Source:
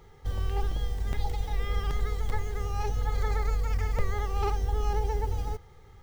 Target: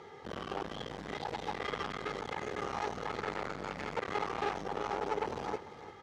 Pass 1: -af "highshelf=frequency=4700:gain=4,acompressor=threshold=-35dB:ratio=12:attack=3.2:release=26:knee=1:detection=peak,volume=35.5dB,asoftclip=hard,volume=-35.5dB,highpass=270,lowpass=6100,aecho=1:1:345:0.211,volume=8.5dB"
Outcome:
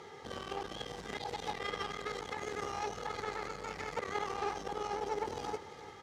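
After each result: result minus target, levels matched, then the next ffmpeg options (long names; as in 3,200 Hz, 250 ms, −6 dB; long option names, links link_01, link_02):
downward compressor: peak gain reduction +6 dB; 8,000 Hz band +5.5 dB
-af "highshelf=frequency=4700:gain=4,acompressor=threshold=-28.5dB:ratio=12:attack=3.2:release=26:knee=1:detection=peak,volume=35.5dB,asoftclip=hard,volume=-35.5dB,highpass=270,lowpass=6100,aecho=1:1:345:0.211,volume=8.5dB"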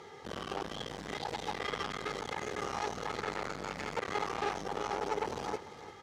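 8,000 Hz band +6.0 dB
-af "highshelf=frequency=4700:gain=-7,acompressor=threshold=-28.5dB:ratio=12:attack=3.2:release=26:knee=1:detection=peak,volume=35.5dB,asoftclip=hard,volume=-35.5dB,highpass=270,lowpass=6100,aecho=1:1:345:0.211,volume=8.5dB"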